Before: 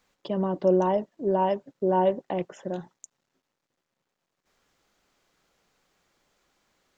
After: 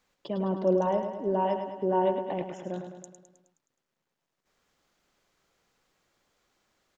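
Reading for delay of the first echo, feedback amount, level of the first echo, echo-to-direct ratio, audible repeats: 0.105 s, 57%, -7.5 dB, -6.0 dB, 6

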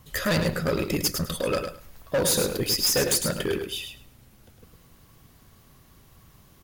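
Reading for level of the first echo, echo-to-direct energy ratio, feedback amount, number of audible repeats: -7.0 dB, -7.0 dB, 17%, 2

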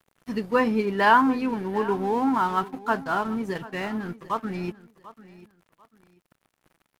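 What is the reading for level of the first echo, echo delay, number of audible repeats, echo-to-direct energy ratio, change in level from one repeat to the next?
-18.0 dB, 0.743 s, 2, -17.5 dB, -11.5 dB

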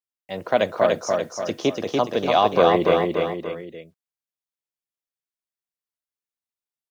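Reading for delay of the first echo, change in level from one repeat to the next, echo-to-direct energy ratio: 0.29 s, -6.5 dB, -2.0 dB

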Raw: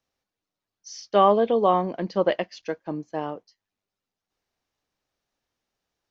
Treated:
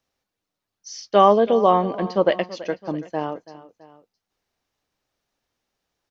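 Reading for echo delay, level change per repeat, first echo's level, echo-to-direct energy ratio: 0.331 s, -5.5 dB, -17.0 dB, -16.0 dB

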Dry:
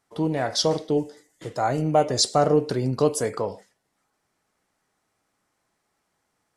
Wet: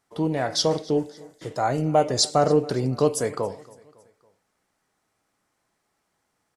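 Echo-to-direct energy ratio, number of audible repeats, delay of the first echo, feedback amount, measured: -21.5 dB, 3, 0.278 s, 50%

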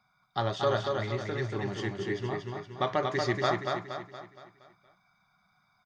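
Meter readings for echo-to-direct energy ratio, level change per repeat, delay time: -3.0 dB, -6.5 dB, 0.234 s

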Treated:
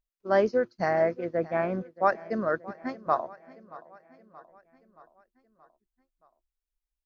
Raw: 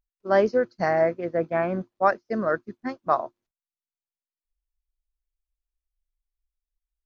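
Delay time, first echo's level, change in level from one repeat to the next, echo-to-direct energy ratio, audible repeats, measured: 0.626 s, -19.5 dB, -5.0 dB, -18.0 dB, 4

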